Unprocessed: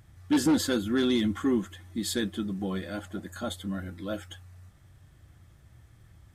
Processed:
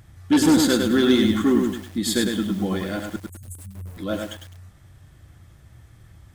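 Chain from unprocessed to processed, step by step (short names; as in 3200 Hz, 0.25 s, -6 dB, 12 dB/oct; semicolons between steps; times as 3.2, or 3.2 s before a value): 3.16–3.97 elliptic band-stop 120–8700 Hz, stop band 40 dB; lo-fi delay 0.103 s, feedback 35%, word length 8-bit, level -4 dB; gain +6.5 dB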